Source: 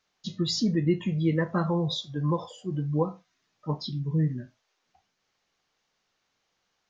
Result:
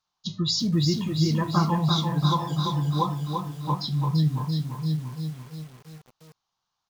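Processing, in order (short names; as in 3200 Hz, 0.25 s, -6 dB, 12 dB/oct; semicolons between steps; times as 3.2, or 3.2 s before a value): gate -43 dBFS, range -12 dB; graphic EQ 125/250/500/1000/2000/4000 Hz +5/-5/-10/+11/-11/+4 dB; echo 0.712 s -10 dB; in parallel at -3 dB: compressor 16:1, threshold -37 dBFS, peak gain reduction 17.5 dB; on the sum: lo-fi delay 0.34 s, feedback 55%, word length 8-bit, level -4.5 dB; gain +1 dB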